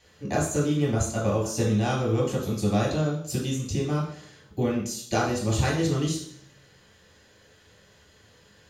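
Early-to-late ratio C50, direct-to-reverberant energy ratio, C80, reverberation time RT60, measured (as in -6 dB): 4.0 dB, -5.0 dB, 8.5 dB, 0.60 s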